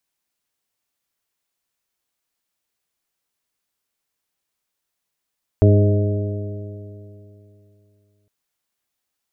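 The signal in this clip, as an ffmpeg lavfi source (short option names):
-f lavfi -i "aevalsrc='0.355*pow(10,-3*t/2.88)*sin(2*PI*101.1*t)+0.112*pow(10,-3*t/2.88)*sin(2*PI*202.77*t)+0.112*pow(10,-3*t/2.88)*sin(2*PI*305.58*t)+0.141*pow(10,-3*t/2.88)*sin(2*PI*410.09*t)+0.0376*pow(10,-3*t/2.88)*sin(2*PI*516.85*t)+0.0891*pow(10,-3*t/2.88)*sin(2*PI*626.38*t)':d=2.66:s=44100"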